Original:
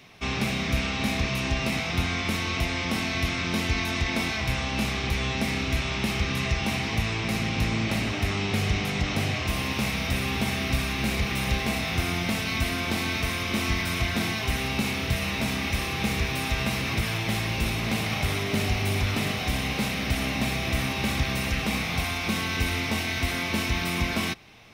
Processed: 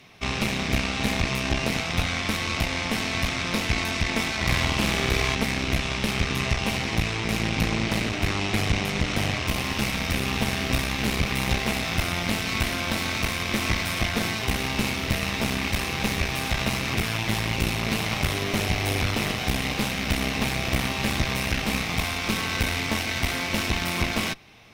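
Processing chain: 4.36–5.35 flutter echo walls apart 8.3 m, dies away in 0.96 s; added harmonics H 4 -10 dB, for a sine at -12.5 dBFS

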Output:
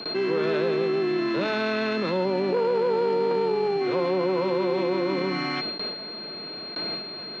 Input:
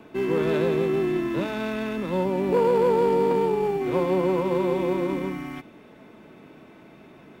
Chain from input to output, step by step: speaker cabinet 210–5600 Hz, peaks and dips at 270 Hz -8 dB, 920 Hz -3 dB, 1400 Hz +3 dB; whine 4200 Hz -44 dBFS; gate with hold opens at -36 dBFS; fast leveller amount 70%; gain -3 dB

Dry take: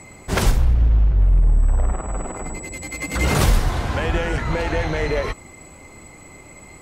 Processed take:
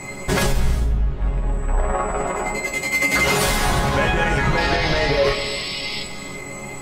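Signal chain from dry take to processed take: 1.1–3.69 low shelf 280 Hz -10.5 dB; compressor 6:1, threshold -22 dBFS, peak gain reduction 11 dB; 4.57–6.03 painted sound noise 1900–5500 Hz -39 dBFS; resonator bank C#3 sus4, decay 0.21 s; non-linear reverb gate 0.39 s flat, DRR 10 dB; maximiser +30.5 dB; gain -8 dB

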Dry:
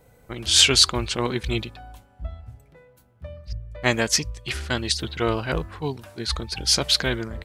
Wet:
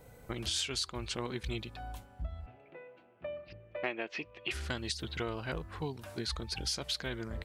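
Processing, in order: 2.46–4.51 speaker cabinet 280–3100 Hz, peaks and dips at 340 Hz +8 dB, 680 Hz +6 dB, 2600 Hz +9 dB; compressor 5:1, threshold -35 dBFS, peak gain reduction 21.5 dB

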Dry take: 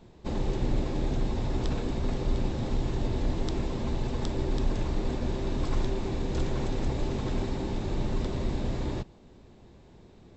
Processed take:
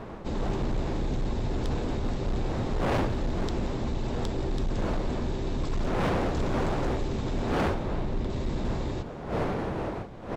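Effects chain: wind noise 580 Hz -30 dBFS; 7.74–8.3 high shelf 4500 Hz -11 dB; hard clip -23.5 dBFS, distortion -9 dB; frequency-shifting echo 0.177 s, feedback 64%, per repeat -120 Hz, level -16.5 dB

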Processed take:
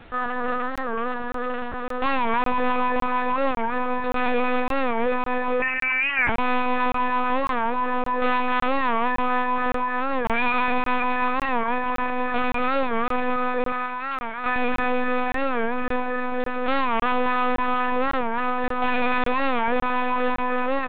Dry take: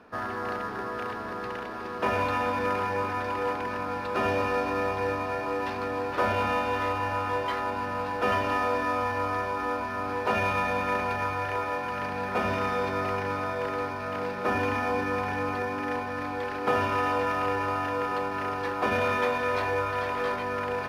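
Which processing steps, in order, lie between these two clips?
octaver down 1 oct, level +1 dB; 13.72–14.57 HPF 850 Hz 12 dB/oct; comb 4.1 ms, depth 77%; soft clip -12 dBFS, distortion -26 dB; requantised 8-bit, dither none; hard clip -22 dBFS, distortion -14 dB; analogue delay 0.278 s, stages 2048, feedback 64%, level -19 dB; 5.62–6.29 inverted band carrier 2800 Hz; LPC vocoder at 8 kHz pitch kept; crackling interface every 0.56 s, samples 1024, zero, from 0.76; record warp 45 rpm, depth 160 cents; gain +4 dB

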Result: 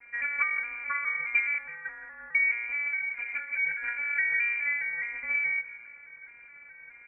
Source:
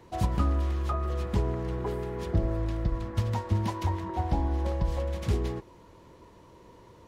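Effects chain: arpeggiated vocoder major triad, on A#3, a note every 0.209 s; 1.58–2.35 elliptic high-pass 680 Hz; crackle 330/s -50 dBFS; feedback echo 0.168 s, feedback 41%, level -16 dB; inverted band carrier 2600 Hz; 2.97–3.84 ensemble effect; gain +3.5 dB

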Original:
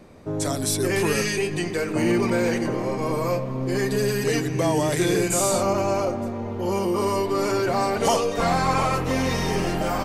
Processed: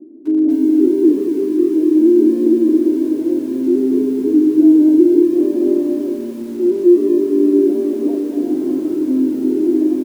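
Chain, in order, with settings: comb 3.1 ms, depth 62%; in parallel at -7.5 dB: sample-and-hold 31×; on the sum: Butterworth band-pass 310 Hz, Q 3.5; maximiser +15.5 dB; lo-fi delay 0.236 s, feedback 35%, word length 6-bit, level -5.5 dB; gain -4 dB

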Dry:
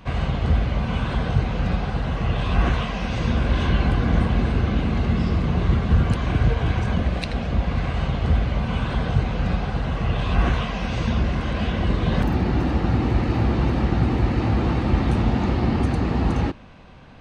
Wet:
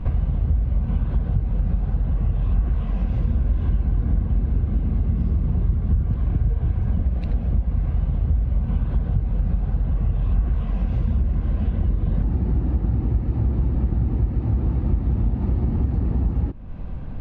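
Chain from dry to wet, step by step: tilt -4.5 dB/oct; compressor 4:1, threshold -21 dBFS, peak gain reduction 21.5 dB

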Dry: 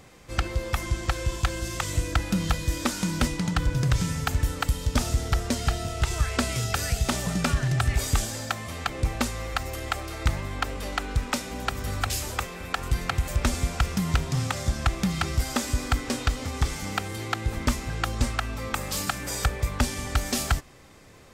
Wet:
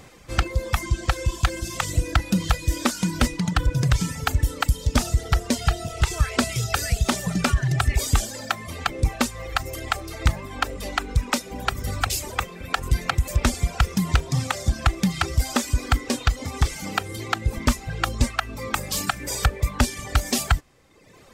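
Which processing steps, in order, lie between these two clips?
reverb removal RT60 1.1 s; gain +4.5 dB

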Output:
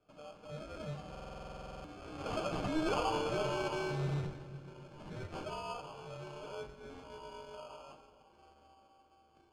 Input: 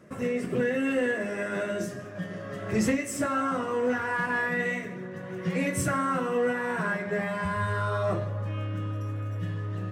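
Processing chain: Doppler pass-by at 3.09, 50 m/s, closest 5.6 m; HPF 1100 Hz 12 dB/oct; reverse; compressor 6:1, threshold -45 dBFS, peak gain reduction 13 dB; reverse; sample-and-hold 24×; in parallel at -6 dB: wrapped overs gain 49.5 dB; on the sum: air absorption 89 m; reverb RT60 2.3 s, pre-delay 5 ms, DRR 7.5 dB; speed mistake 24 fps film run at 25 fps; stuck buffer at 1.1, samples 2048, times 15; gain +13.5 dB

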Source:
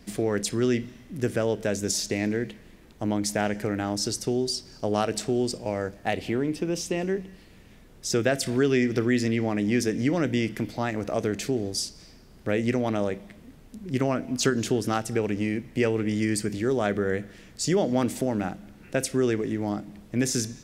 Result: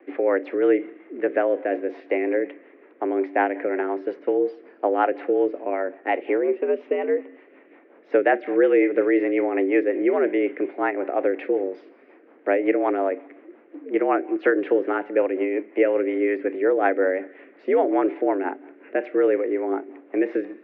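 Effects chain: mistuned SSB +81 Hz 230–2200 Hz; rotary speaker horn 5.5 Hz; gain +7.5 dB

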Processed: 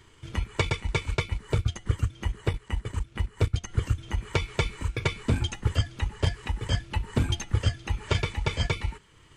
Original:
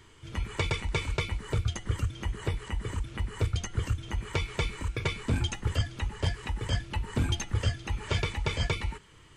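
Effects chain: transient shaper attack +5 dB, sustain -6 dB, from 2.41 s sustain -12 dB, from 3.67 s sustain -2 dB

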